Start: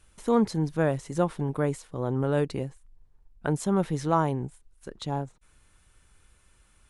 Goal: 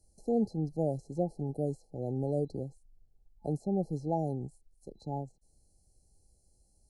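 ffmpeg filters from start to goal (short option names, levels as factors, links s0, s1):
-filter_complex "[0:a]afftfilt=real='re*(1-between(b*sr/4096,860,4000))':imag='im*(1-between(b*sr/4096,860,4000))':win_size=4096:overlap=0.75,acrossover=split=120|2700[s0][s1][s2];[s2]acompressor=threshold=0.00126:ratio=6[s3];[s0][s1][s3]amix=inputs=3:normalize=0,volume=0.501"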